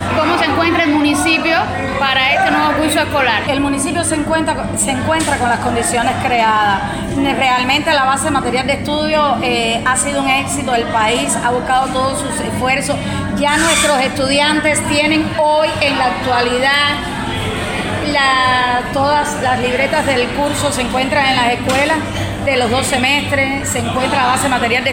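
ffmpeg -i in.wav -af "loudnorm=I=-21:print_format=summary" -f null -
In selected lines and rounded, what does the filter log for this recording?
Input Integrated:    -14.1 LUFS
Input True Peak:      -1.4 dBTP
Input LRA:             1.6 LU
Input Threshold:     -24.1 LUFS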